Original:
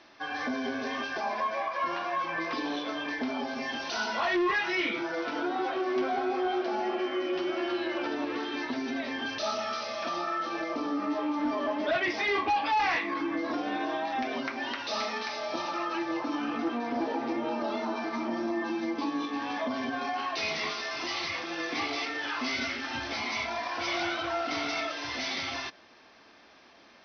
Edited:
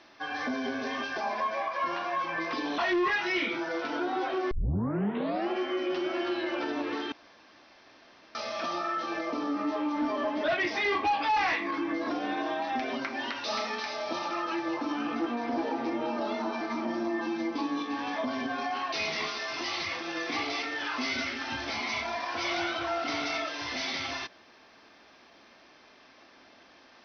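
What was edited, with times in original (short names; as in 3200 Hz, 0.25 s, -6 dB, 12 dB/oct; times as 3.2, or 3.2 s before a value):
2.78–4.21 cut
5.94 tape start 1.00 s
8.55–9.78 room tone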